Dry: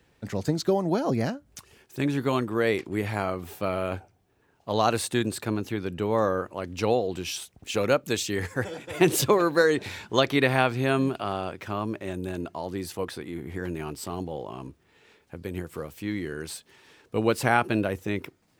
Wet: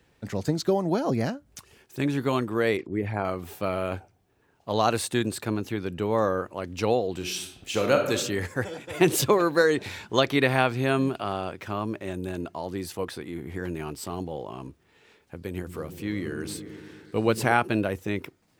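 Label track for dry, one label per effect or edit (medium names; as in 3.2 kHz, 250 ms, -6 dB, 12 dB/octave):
2.770000	3.250000	resonances exaggerated exponent 1.5
7.160000	8.120000	reverb throw, RT60 0.86 s, DRR 3 dB
15.510000	17.530000	delay with an opening low-pass 115 ms, low-pass from 200 Hz, each repeat up 1 oct, level -6 dB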